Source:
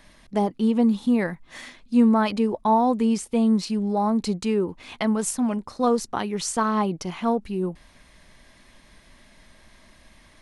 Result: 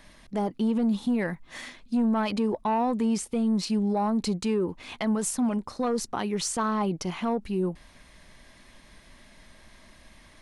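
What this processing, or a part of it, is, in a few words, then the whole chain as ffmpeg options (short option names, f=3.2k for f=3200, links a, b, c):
soft clipper into limiter: -af "asoftclip=type=tanh:threshold=-13.5dB,alimiter=limit=-19.5dB:level=0:latency=1:release=45"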